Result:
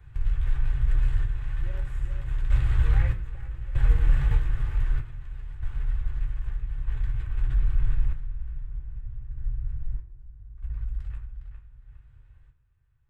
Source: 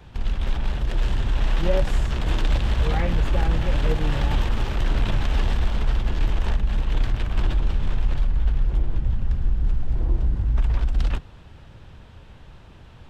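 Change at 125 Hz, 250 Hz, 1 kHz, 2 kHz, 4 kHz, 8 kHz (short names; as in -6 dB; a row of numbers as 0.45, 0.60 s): -4.5 dB, -15.5 dB, -14.5 dB, -9.5 dB, -18.5 dB, n/a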